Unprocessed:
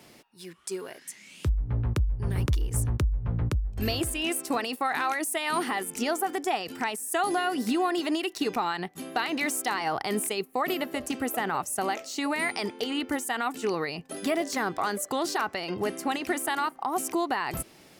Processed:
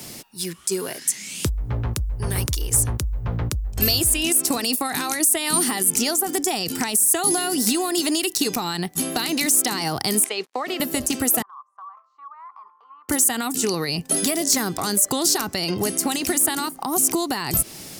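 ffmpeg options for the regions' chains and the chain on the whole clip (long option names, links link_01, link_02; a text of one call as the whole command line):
ffmpeg -i in.wav -filter_complex "[0:a]asettb=1/sr,asplit=3[link_01][link_02][link_03];[link_01]atrim=end=10.244[link_04];[link_02]atrim=start=10.24:end=10.8,asetpts=PTS-STARTPTS,afade=type=in:duration=0.004:curve=qsin,afade=type=out:start_time=0.556:duration=0.004:curve=qsin,acrusher=bits=7:mix=0:aa=0.5,highpass=520,lowpass=3000[link_05];[link_03]atrim=start=10.796[link_06];[link_04][link_05]acrossfade=duration=0.004:curve1=hsin:curve2=qsin[link_07];[link_07][link_06]acrossfade=duration=0.004:curve1=qsin:curve2=hsin,asettb=1/sr,asplit=3[link_08][link_09][link_10];[link_08]atrim=end=11.424[link_11];[link_09]atrim=start=11.42:end=13.09,asetpts=PTS-STARTPTS,afade=type=in:duration=0.004:curve=qsin,afade=type=out:start_time=1.666:duration=0.004:curve=qsin,asuperpass=centerf=1100:order=4:qfactor=7.4,acompressor=threshold=-48dB:ratio=3:attack=3.2:release=140:knee=1:detection=peak[link_12];[link_10]atrim=start=13.086[link_13];[link_11][link_12]acrossfade=duration=0.004:curve1=hsin:curve2=qsin[link_14];[link_14][link_13]acrossfade=duration=0.004:curve1=qsin:curve2=hsin,bass=frequency=250:gain=7,treble=frequency=4000:gain=13,acrossover=split=370|4300[link_15][link_16][link_17];[link_15]acompressor=threshold=-35dB:ratio=4[link_18];[link_16]acompressor=threshold=-37dB:ratio=4[link_19];[link_17]acompressor=threshold=-24dB:ratio=4[link_20];[link_18][link_19][link_20]amix=inputs=3:normalize=0,alimiter=level_in=15dB:limit=-1dB:release=50:level=0:latency=1,volume=-5.5dB" out.wav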